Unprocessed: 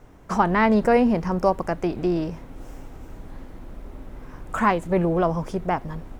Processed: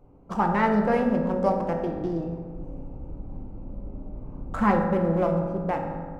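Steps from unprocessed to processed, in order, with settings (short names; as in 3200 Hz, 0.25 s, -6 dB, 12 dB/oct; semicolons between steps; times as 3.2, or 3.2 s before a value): Wiener smoothing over 25 samples; 2.55–4.85 low shelf 360 Hz +7 dB; reverb RT60 1.7 s, pre-delay 3 ms, DRR 1 dB; dynamic EQ 3800 Hz, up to -5 dB, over -44 dBFS, Q 1.8; gain -5 dB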